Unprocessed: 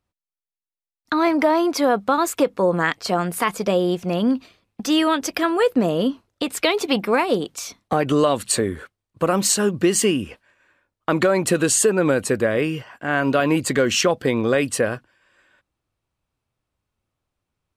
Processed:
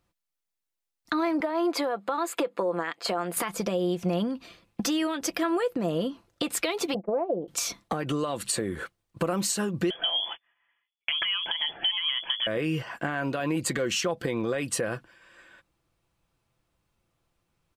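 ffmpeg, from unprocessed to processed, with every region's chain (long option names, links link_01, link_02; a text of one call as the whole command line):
ffmpeg -i in.wav -filter_complex "[0:a]asettb=1/sr,asplit=3[link_01][link_02][link_03];[link_01]atrim=end=1.404[link_04];[link_02]atrim=start=1.4:end=3.37,asetpts=PTS-STARTPTS,afade=type=in:duration=0.004:curve=qsin,afade=type=out:start_time=1.966:duration=0.004:curve=qsin,highpass=320,highshelf=frequency=5500:gain=-7.5,bandreject=frequency=5700:width=5.3[link_05];[link_03]atrim=start=3.366[link_06];[link_04][link_05]acrossfade=duration=0.004:curve1=hsin:curve2=qsin[link_07];[link_07][link_06]acrossfade=duration=0.004:curve1=qsin:curve2=hsin,asettb=1/sr,asplit=3[link_08][link_09][link_10];[link_08]atrim=end=6.944[link_11];[link_09]atrim=start=6.94:end=7.48,asetpts=PTS-STARTPTS,afade=type=in:duration=0.004:curve=qsin,afade=type=out:start_time=0.536:duration=0.004:curve=qsin,agate=range=-33dB:threshold=-19dB:ratio=3:release=100:detection=peak,lowpass=frequency=610:width_type=q:width=3.8[link_12];[link_10]atrim=start=7.476[link_13];[link_11][link_12]acrossfade=duration=0.004:curve1=hsin:curve2=qsin[link_14];[link_14][link_13]acrossfade=duration=0.004:curve1=qsin:curve2=hsin,asettb=1/sr,asplit=3[link_15][link_16][link_17];[link_15]atrim=end=9.904[link_18];[link_16]atrim=start=9.9:end=12.47,asetpts=PTS-STARTPTS,afade=type=in:duration=0.004:curve=qsin,afade=type=out:start_time=2.566:duration=0.004:curve=qsin,agate=range=-17dB:threshold=-49dB:ratio=16:release=100:detection=peak,acompressor=threshold=-23dB:ratio=2:attack=3.2:release=140:knee=1:detection=peak,lowpass=frequency=3000:width_type=q:width=0.5098,lowpass=frequency=3000:width_type=q:width=0.6013,lowpass=frequency=3000:width_type=q:width=0.9,lowpass=frequency=3000:width_type=q:width=2.563,afreqshift=-3500[link_19];[link_17]atrim=start=12.466[link_20];[link_18][link_19]acrossfade=duration=0.004:curve1=hsin:curve2=qsin[link_21];[link_21][link_20]acrossfade=duration=0.004:curve1=qsin:curve2=hsin,alimiter=limit=-16dB:level=0:latency=1:release=219,acompressor=threshold=-31dB:ratio=4,aecho=1:1:5.9:0.36,volume=4.5dB" out.wav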